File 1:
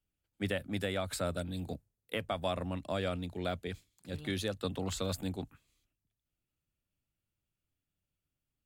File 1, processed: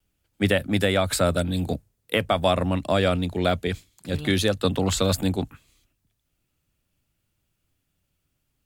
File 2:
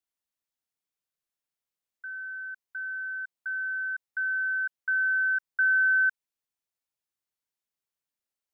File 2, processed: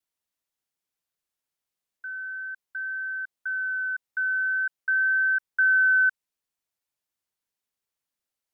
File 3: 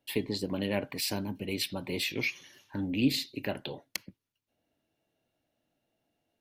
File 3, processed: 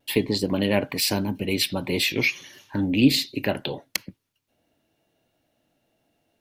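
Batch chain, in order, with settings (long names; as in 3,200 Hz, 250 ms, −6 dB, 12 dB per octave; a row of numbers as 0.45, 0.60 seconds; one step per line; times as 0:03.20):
pitch vibrato 0.44 Hz 11 cents
loudness normalisation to −24 LKFS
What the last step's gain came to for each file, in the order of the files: +13.0, +3.0, +9.0 decibels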